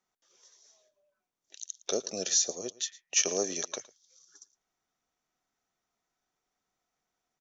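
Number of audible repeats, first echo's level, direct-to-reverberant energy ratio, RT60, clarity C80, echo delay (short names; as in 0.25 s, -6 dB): 1, -20.5 dB, none, none, none, 0.112 s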